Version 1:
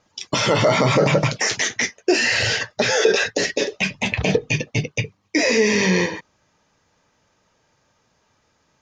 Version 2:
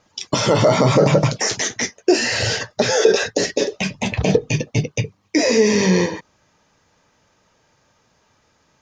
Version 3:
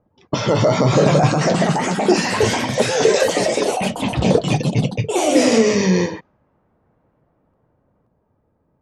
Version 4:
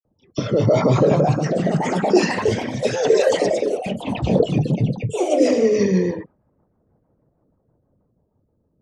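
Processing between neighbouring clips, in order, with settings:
dynamic bell 2.3 kHz, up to -8 dB, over -36 dBFS, Q 0.83; trim +3.5 dB
bass shelf 390 Hz +3.5 dB; level-controlled noise filter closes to 660 Hz, open at -10.5 dBFS; ever faster or slower copies 652 ms, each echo +3 st, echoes 3; trim -2.5 dB
resonances exaggerated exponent 1.5; rotary cabinet horn 0.85 Hz, later 6.3 Hz, at 4.21 s; phase dispersion lows, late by 51 ms, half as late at 2.4 kHz

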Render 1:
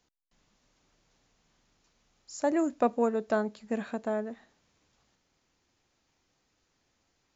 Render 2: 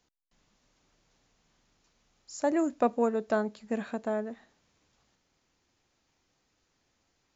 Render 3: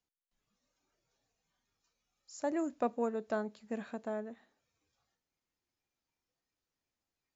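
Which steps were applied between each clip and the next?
no audible change
spectral noise reduction 10 dB; trim -7 dB

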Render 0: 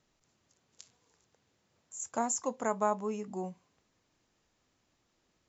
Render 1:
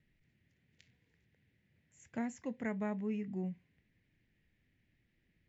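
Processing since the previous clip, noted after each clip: FFT filter 160 Hz 0 dB, 1.2 kHz -25 dB, 1.9 kHz 0 dB, 7.2 kHz -29 dB; trim +5.5 dB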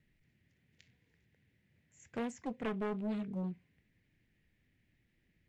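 loudspeaker Doppler distortion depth 0.64 ms; trim +1 dB

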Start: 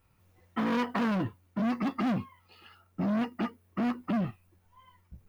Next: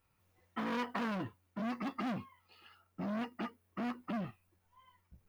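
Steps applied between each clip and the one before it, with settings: bass shelf 370 Hz -6 dB; trim -5 dB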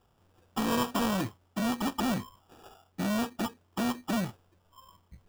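sample-rate reducer 2.1 kHz, jitter 0%; trim +8 dB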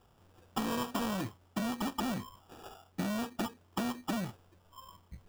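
compression 6:1, threshold -34 dBFS, peak gain reduction 9.5 dB; trim +3 dB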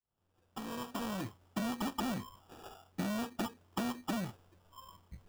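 fade-in on the opening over 1.47 s; trim -1.5 dB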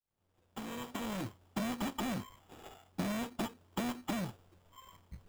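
dead-time distortion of 0.28 ms; trim +1 dB

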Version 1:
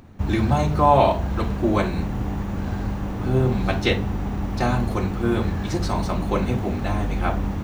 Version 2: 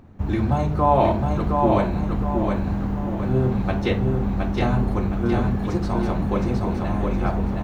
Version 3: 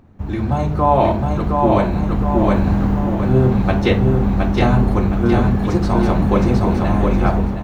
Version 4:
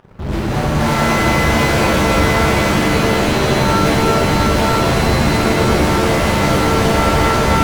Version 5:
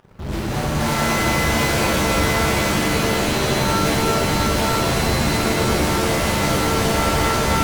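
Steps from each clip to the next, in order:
treble shelf 2.2 kHz -10 dB; feedback delay 716 ms, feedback 38%, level -3.5 dB; trim -1 dB
level rider; trim -1 dB
fuzz box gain 36 dB, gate -45 dBFS; pitch-shifted reverb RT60 3.9 s, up +7 st, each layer -2 dB, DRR -5 dB; trim -9 dB
treble shelf 4.1 kHz +8 dB; trim -5.5 dB

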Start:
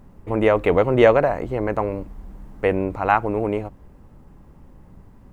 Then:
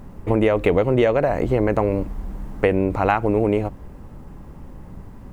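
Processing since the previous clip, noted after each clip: dynamic bell 1.1 kHz, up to -6 dB, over -32 dBFS, Q 0.88; compression 12:1, threshold -21 dBFS, peak gain reduction 12 dB; trim +8 dB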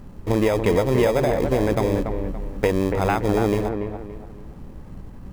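in parallel at -8 dB: sample-and-hold 31×; on the sum: feedback echo behind a low-pass 285 ms, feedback 32%, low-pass 2 kHz, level -6 dB; trim -4 dB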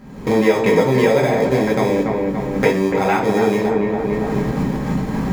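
recorder AGC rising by 44 dB/s; reverberation RT60 0.35 s, pre-delay 3 ms, DRR -2 dB; trim -2.5 dB

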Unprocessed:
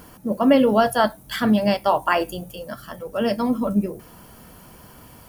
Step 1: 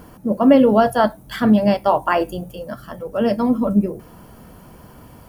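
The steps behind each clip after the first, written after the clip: tilt shelf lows +4.5 dB, about 1.5 kHz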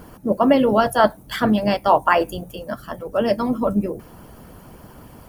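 harmonic-percussive split percussive +9 dB; trim -5 dB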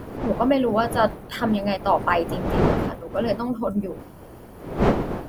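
wind noise 490 Hz -23 dBFS; trim -4.5 dB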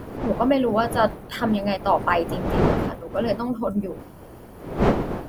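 no audible change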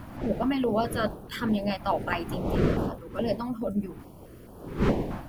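step-sequenced notch 4.7 Hz 430–2100 Hz; trim -3.5 dB

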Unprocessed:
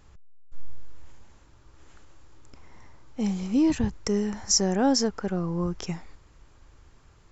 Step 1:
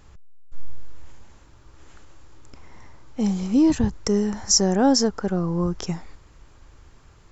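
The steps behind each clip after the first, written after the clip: dynamic bell 2.4 kHz, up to -6 dB, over -52 dBFS, Q 1.8; trim +4.5 dB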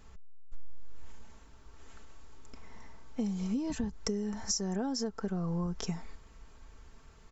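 comb 4.5 ms, depth 51%; compression 16:1, threshold -24 dBFS, peak gain reduction 13 dB; trim -5.5 dB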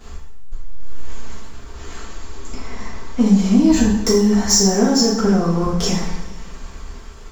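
waveshaping leveller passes 2; two-slope reverb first 0.64 s, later 2.2 s, DRR -7 dB; trim +5 dB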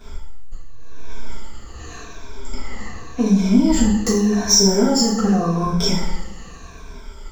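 drifting ripple filter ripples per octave 1.6, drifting -0.86 Hz, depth 14 dB; trim -3 dB

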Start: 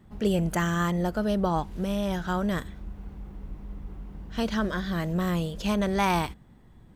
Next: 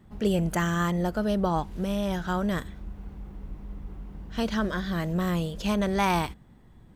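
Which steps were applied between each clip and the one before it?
no audible change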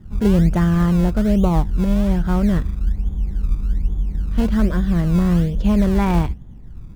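RIAA curve playback; in parallel at -10 dB: decimation with a swept rate 25×, swing 100% 1.2 Hz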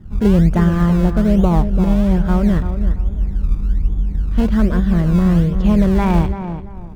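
treble shelf 4.2 kHz -5 dB; tape echo 337 ms, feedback 31%, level -8 dB, low-pass 1.6 kHz; trim +2.5 dB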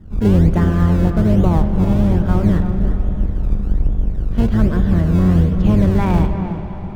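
octave divider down 1 oct, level -2 dB; on a send at -9 dB: reverberation RT60 5.3 s, pre-delay 48 ms; on the sum: trim -2 dB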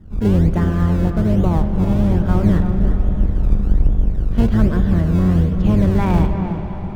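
gain riding within 4 dB 2 s; trim -1 dB

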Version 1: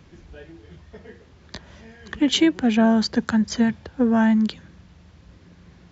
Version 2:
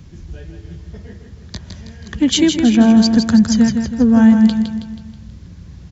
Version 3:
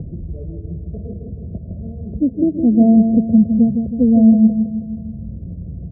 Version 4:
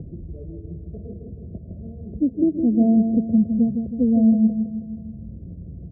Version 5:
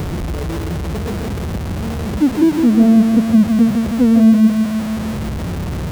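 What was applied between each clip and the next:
tone controls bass +13 dB, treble +10 dB; on a send: feedback delay 161 ms, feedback 47%, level -6.5 dB
upward compressor, threshold -17 dBFS; rippled Chebyshev low-pass 690 Hz, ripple 3 dB
peaking EQ 340 Hz +5 dB 0.86 oct; trim -7.5 dB
jump at every zero crossing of -24 dBFS; trim +5 dB

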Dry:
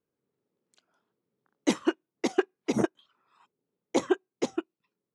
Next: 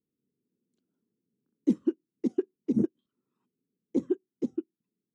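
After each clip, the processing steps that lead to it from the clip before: FFT filter 120 Hz 0 dB, 240 Hz +7 dB, 480 Hz -6 dB, 670 Hz -21 dB, 2.3 kHz -23 dB, 11 kHz -18 dB; trim -2 dB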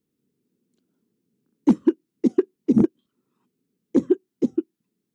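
overload inside the chain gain 17 dB; trim +9 dB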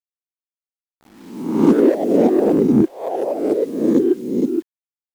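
reverse spectral sustain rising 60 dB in 0.88 s; word length cut 8-bit, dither none; ever faster or slower copies 364 ms, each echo +4 st, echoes 3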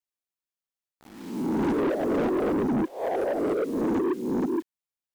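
in parallel at +2 dB: compression, threshold -22 dBFS, peak gain reduction 13.5 dB; on the sum: saturation -15.5 dBFS, distortion -8 dB; trim -6.5 dB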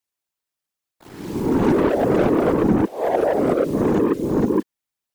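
whisper effect; trim +7 dB

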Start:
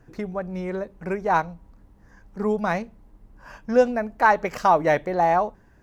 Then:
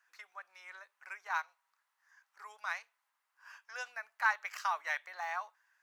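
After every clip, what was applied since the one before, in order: high-pass 1.2 kHz 24 dB/octave; trim -7 dB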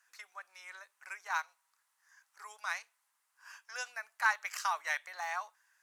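peaking EQ 9.2 kHz +11.5 dB 1.6 oct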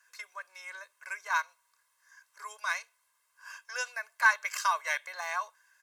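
comb 1.9 ms, depth 76%; trim +3 dB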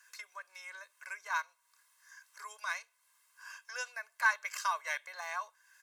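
tape noise reduction on one side only encoder only; trim -5 dB

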